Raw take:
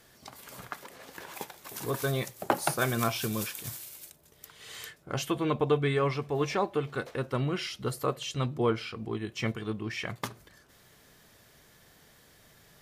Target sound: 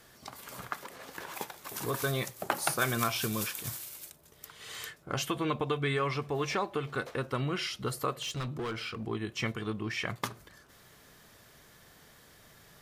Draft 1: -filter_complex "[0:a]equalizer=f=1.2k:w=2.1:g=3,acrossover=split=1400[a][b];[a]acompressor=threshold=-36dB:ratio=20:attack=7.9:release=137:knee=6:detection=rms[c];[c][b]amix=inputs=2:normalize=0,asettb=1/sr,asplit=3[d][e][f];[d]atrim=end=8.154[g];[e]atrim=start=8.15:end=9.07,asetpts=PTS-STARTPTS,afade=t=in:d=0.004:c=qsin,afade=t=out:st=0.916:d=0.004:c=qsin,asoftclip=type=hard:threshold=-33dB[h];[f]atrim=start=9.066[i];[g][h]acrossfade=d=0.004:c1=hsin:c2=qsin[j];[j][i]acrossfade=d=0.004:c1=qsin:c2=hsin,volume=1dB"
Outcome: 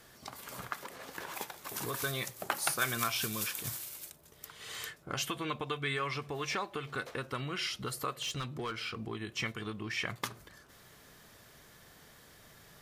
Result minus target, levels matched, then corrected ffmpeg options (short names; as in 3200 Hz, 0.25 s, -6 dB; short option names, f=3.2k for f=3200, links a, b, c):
compressor: peak gain reduction +7.5 dB
-filter_complex "[0:a]equalizer=f=1.2k:w=2.1:g=3,acrossover=split=1400[a][b];[a]acompressor=threshold=-28dB:ratio=20:attack=7.9:release=137:knee=6:detection=rms[c];[c][b]amix=inputs=2:normalize=0,asettb=1/sr,asplit=3[d][e][f];[d]atrim=end=8.154[g];[e]atrim=start=8.15:end=9.07,asetpts=PTS-STARTPTS,afade=t=in:d=0.004:c=qsin,afade=t=out:st=0.916:d=0.004:c=qsin,asoftclip=type=hard:threshold=-33dB[h];[f]atrim=start=9.066[i];[g][h]acrossfade=d=0.004:c1=hsin:c2=qsin[j];[j][i]acrossfade=d=0.004:c1=qsin:c2=hsin,volume=1dB"